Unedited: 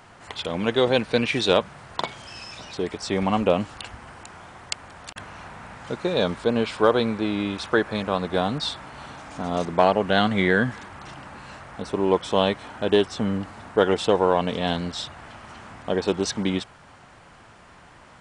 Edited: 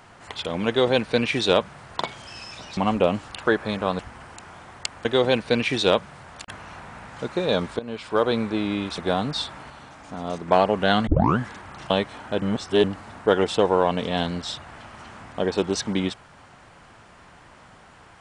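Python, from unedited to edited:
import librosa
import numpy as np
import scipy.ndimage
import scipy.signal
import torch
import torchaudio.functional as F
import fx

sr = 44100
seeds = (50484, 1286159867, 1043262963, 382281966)

y = fx.edit(x, sr, fx.duplicate(start_s=0.68, length_s=1.19, to_s=4.92),
    fx.cut(start_s=2.77, length_s=0.46),
    fx.fade_in_from(start_s=6.47, length_s=0.6, floor_db=-17.0),
    fx.move(start_s=7.66, length_s=0.59, to_s=3.86),
    fx.clip_gain(start_s=8.97, length_s=0.78, db=-4.5),
    fx.tape_start(start_s=10.34, length_s=0.32),
    fx.cut(start_s=11.17, length_s=1.23),
    fx.reverse_span(start_s=12.92, length_s=0.42), tone=tone)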